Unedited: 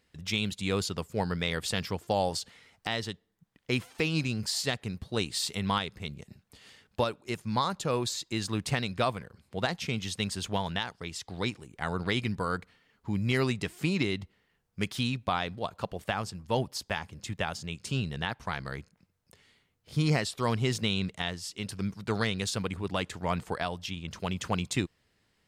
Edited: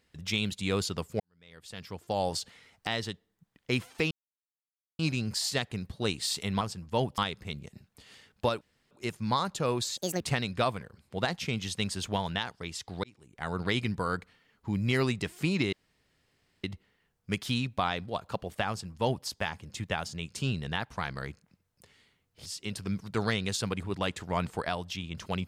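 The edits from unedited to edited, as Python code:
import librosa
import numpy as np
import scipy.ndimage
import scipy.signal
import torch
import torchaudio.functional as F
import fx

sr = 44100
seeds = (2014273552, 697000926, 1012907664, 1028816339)

y = fx.edit(x, sr, fx.fade_in_span(start_s=1.2, length_s=1.13, curve='qua'),
    fx.insert_silence(at_s=4.11, length_s=0.88),
    fx.insert_room_tone(at_s=7.16, length_s=0.3),
    fx.speed_span(start_s=8.22, length_s=0.39, speed=1.65),
    fx.fade_in_span(start_s=11.44, length_s=0.57),
    fx.insert_room_tone(at_s=14.13, length_s=0.91),
    fx.duplicate(start_s=16.18, length_s=0.57, to_s=5.73),
    fx.cut(start_s=19.95, length_s=1.44), tone=tone)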